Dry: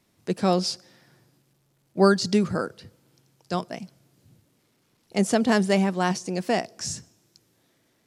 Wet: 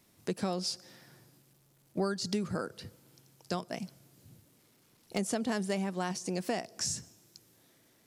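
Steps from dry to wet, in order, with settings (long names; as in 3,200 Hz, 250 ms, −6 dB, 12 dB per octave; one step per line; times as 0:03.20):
high-shelf EQ 8,500 Hz +8.5 dB
downward compressor 4 to 1, threshold −31 dBFS, peak gain reduction 16 dB
hard clipping −19.5 dBFS, distortion −34 dB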